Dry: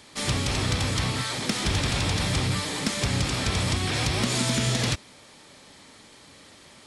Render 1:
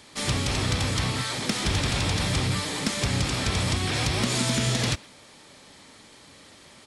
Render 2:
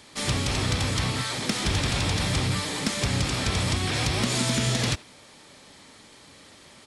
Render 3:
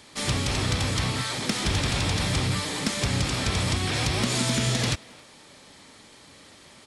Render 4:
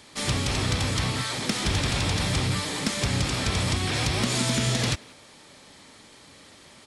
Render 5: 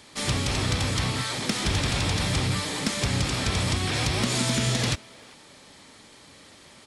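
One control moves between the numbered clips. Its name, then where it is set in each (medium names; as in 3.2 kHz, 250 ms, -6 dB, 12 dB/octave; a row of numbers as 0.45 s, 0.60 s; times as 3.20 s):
speakerphone echo, time: 120 ms, 80 ms, 270 ms, 180 ms, 390 ms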